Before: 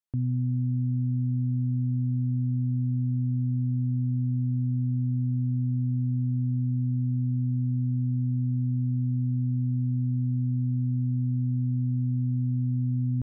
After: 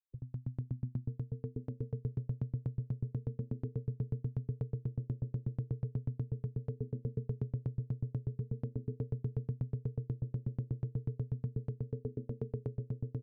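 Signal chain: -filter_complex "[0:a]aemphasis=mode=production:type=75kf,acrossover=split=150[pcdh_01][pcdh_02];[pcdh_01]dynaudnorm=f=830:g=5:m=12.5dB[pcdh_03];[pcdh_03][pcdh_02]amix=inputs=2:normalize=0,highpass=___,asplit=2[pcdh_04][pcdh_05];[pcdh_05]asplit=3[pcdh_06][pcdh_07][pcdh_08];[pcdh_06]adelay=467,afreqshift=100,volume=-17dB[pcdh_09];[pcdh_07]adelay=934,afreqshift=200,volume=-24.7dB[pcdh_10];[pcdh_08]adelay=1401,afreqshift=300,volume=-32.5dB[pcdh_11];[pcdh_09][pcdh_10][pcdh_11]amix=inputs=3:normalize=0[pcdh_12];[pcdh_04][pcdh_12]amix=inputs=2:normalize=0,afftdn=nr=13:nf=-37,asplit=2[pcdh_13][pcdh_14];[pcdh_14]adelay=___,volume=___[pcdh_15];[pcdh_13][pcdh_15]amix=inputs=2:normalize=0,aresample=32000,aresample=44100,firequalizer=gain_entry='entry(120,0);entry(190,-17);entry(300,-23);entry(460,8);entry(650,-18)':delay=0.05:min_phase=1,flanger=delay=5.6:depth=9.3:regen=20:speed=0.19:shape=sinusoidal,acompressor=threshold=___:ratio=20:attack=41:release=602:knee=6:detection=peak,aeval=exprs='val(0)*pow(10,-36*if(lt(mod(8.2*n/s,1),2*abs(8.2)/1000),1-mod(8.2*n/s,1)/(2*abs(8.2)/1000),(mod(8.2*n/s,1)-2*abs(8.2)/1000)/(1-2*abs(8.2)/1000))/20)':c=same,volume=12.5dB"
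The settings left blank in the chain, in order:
56, 44, -3dB, -39dB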